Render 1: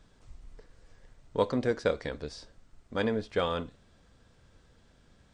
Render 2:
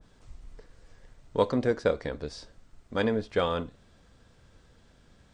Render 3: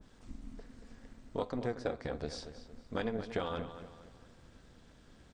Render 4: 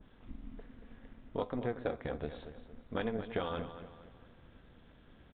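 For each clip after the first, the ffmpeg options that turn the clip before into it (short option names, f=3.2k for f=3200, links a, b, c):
-af "adynamicequalizer=threshold=0.00562:dfrequency=1600:dqfactor=0.7:tfrequency=1600:tqfactor=0.7:attack=5:release=100:ratio=0.375:range=3:mode=cutabove:tftype=highshelf,volume=2.5dB"
-filter_complex "[0:a]acompressor=threshold=-33dB:ratio=4,tremolo=f=240:d=0.75,asplit=2[a][b];[b]adelay=231,lowpass=f=4.6k:p=1,volume=-11dB,asplit=2[c][d];[d]adelay=231,lowpass=f=4.6k:p=1,volume=0.4,asplit=2[e][f];[f]adelay=231,lowpass=f=4.6k:p=1,volume=0.4,asplit=2[g][h];[h]adelay=231,lowpass=f=4.6k:p=1,volume=0.4[i];[c][e][g][i]amix=inputs=4:normalize=0[j];[a][j]amix=inputs=2:normalize=0,volume=2.5dB"
-af "aresample=8000,aresample=44100"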